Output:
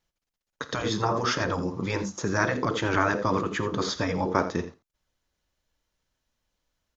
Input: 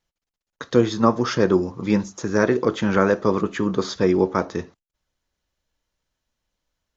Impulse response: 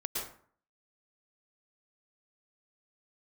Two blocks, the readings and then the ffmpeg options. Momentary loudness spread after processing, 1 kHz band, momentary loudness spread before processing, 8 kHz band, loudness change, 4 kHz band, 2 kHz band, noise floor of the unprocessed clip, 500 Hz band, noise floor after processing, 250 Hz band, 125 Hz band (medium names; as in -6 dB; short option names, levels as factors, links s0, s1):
6 LU, -1.5 dB, 6 LU, no reading, -6.0 dB, 0.0 dB, 0.0 dB, under -85 dBFS, -8.5 dB, under -85 dBFS, -8.5 dB, -4.0 dB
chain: -af "aecho=1:1:51|84:0.112|0.188,afftfilt=real='re*lt(hypot(re,im),0.501)':imag='im*lt(hypot(re,im),0.501)':win_size=1024:overlap=0.75"